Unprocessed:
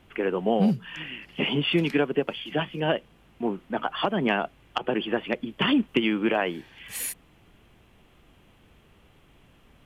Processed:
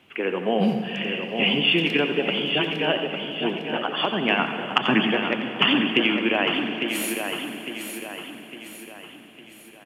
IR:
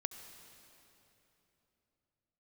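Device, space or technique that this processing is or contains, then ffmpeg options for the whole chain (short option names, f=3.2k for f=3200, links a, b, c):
PA in a hall: -filter_complex "[0:a]asettb=1/sr,asplit=3[a][b][c];[a]atrim=end=4.394[d];[b]atrim=start=4.39:end=5.11,asetpts=PTS-STARTPTS,afade=t=in:d=0.004:c=qsin,afade=t=out:st=0.716:d=0.004:c=qsin,equalizer=f=125:t=o:w=1:g=12,equalizer=f=250:t=o:w=1:g=11,equalizer=f=500:t=o:w=1:g=-10,equalizer=f=1k:t=o:w=1:g=7,equalizer=f=2k:t=o:w=1:g=10,equalizer=f=4k:t=o:w=1:g=-5,equalizer=f=8k:t=o:w=1:g=7[e];[c]atrim=start=5.106[f];[d][e]acrossfade=d=0.004:c1=hsin:c2=qsin[g];[g][f]acrossfade=d=0.004:c1=qsin:c2=hsin,highpass=160,equalizer=f=2.7k:t=o:w=0.71:g=8,aecho=1:1:88:0.316[h];[1:a]atrim=start_sample=2205[i];[h][i]afir=irnorm=-1:irlink=0,aecho=1:1:855|1710|2565|3420|4275:0.447|0.205|0.0945|0.0435|0.02,volume=1.5dB"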